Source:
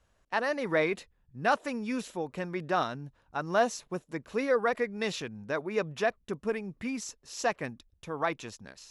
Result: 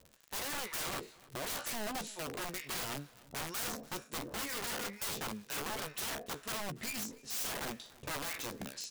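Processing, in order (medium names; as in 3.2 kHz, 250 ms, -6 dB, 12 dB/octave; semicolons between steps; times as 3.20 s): spectral sustain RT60 0.32 s; harmonic tremolo 2.1 Hz, depth 100%, crossover 1.2 kHz; wavefolder -34 dBFS; ten-band graphic EQ 125 Hz +8 dB, 250 Hz +11 dB, 500 Hz +10 dB, 2 kHz +4 dB, 4 kHz +6 dB, 8 kHz +7 dB; crackle 85 per s -41 dBFS; compression 5:1, threshold -34 dBFS, peak gain reduction 9.5 dB; integer overflow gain 32.5 dB; treble shelf 6.6 kHz +4 dB; doubling 14 ms -11.5 dB; echo from a far wall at 50 m, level -21 dB; trim -2.5 dB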